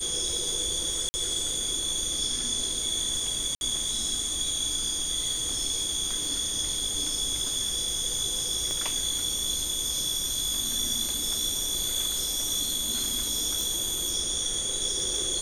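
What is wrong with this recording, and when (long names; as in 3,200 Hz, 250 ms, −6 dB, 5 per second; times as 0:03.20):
surface crackle 120 per second −36 dBFS
whistle 8,900 Hz −33 dBFS
0:01.09–0:01.14: drop-out 50 ms
0:03.55–0:03.61: drop-out 61 ms
0:08.71: click −19 dBFS
0:13.61: click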